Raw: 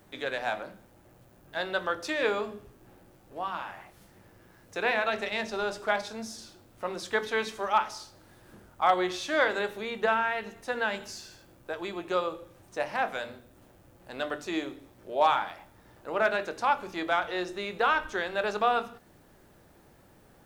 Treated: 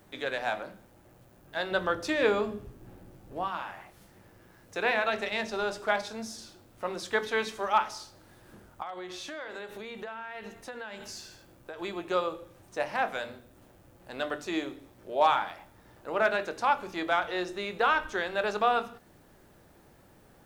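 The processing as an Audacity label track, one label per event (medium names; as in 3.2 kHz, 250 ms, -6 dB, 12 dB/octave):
1.710000	3.480000	bass shelf 320 Hz +9 dB
8.820000	11.810000	compression, threshold -37 dBFS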